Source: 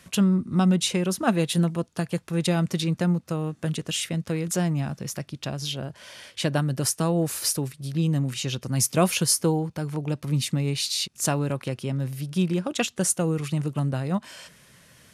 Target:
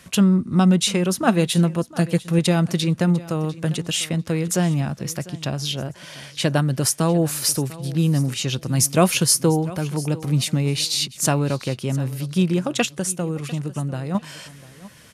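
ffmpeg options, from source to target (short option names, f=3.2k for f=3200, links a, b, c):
-filter_complex "[0:a]asettb=1/sr,asplit=3[a][b][c];[a]atrim=end=1.944[d];[b]atrim=start=1.94:end=2.39,asetpts=PTS-STARTPTS,afade=t=in:d=0.004:c=qsin,afade=t=out:st=0.446:d=0.004:c=qsin,aecho=1:1:6.3:0.59,atrim=end_sample=19845[e];[c]atrim=start=2.386[f];[d][e]acrossfade=d=0.004:c1=hsin:c2=qsin[g];[g][f]acrossfade=d=0.004:c1=qsin:c2=hsin,asettb=1/sr,asplit=3[h][i][j];[h]atrim=end=12.854[k];[i]atrim=start=12.85:end=14.15,asetpts=PTS-STARTPTS,afade=t=in:d=0.004:c=qsin,afade=t=out:st=1.296:d=0.004:c=qsin,acompressor=threshold=-36dB:ratio=1.5[l];[j]atrim=start=14.146[m];[k][l]acrossfade=d=0.004:c1=hsin:c2=qsin[n];[n][m]acrossfade=d=0.004:c1=qsin:c2=hsin,aecho=1:1:698|1396:0.119|0.0238,volume=4.5dB"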